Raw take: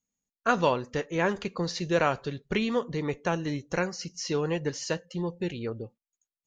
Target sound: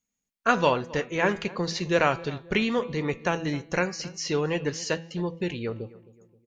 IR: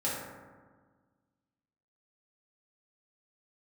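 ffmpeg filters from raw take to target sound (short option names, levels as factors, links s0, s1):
-filter_complex "[0:a]equalizer=f=2300:w=1.4:g=4,bandreject=f=164.9:t=h:w=4,bandreject=f=329.8:t=h:w=4,bandreject=f=494.7:t=h:w=4,bandreject=f=659.6:t=h:w=4,bandreject=f=824.5:t=h:w=4,bandreject=f=989.4:t=h:w=4,bandreject=f=1154.3:t=h:w=4,bandreject=f=1319.2:t=h:w=4,bandreject=f=1484.1:t=h:w=4,bandreject=f=1649:t=h:w=4,bandreject=f=1813.9:t=h:w=4,bandreject=f=1978.8:t=h:w=4,bandreject=f=2143.7:t=h:w=4,bandreject=f=2308.6:t=h:w=4,bandreject=f=2473.5:t=h:w=4,bandreject=f=2638.4:t=h:w=4,bandreject=f=2803.3:t=h:w=4,bandreject=f=2968.2:t=h:w=4,bandreject=f=3133.1:t=h:w=4,bandreject=f=3298:t=h:w=4,bandreject=f=3462.9:t=h:w=4,bandreject=f=3627.8:t=h:w=4,bandreject=f=3792.7:t=h:w=4,bandreject=f=3957.6:t=h:w=4,bandreject=f=4122.5:t=h:w=4,bandreject=f=4287.4:t=h:w=4,bandreject=f=4452.3:t=h:w=4,asplit=2[s0][s1];[s1]adelay=264,lowpass=f=1400:p=1,volume=0.112,asplit=2[s2][s3];[s3]adelay=264,lowpass=f=1400:p=1,volume=0.46,asplit=2[s4][s5];[s5]adelay=264,lowpass=f=1400:p=1,volume=0.46,asplit=2[s6][s7];[s7]adelay=264,lowpass=f=1400:p=1,volume=0.46[s8];[s2][s4][s6][s8]amix=inputs=4:normalize=0[s9];[s0][s9]amix=inputs=2:normalize=0,volume=1.26"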